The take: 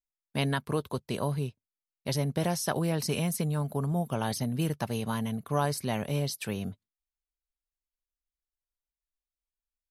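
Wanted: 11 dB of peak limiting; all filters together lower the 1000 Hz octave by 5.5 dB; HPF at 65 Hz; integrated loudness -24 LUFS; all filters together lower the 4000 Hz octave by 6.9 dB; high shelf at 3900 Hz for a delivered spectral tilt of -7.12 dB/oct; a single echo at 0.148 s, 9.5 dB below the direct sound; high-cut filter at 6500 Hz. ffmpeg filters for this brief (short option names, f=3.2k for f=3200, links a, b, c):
-af "highpass=65,lowpass=6.5k,equalizer=f=1k:t=o:g=-7,highshelf=f=3.9k:g=-7.5,equalizer=f=4k:t=o:g=-3.5,alimiter=level_in=3.5dB:limit=-24dB:level=0:latency=1,volume=-3.5dB,aecho=1:1:148:0.335,volume=13dB"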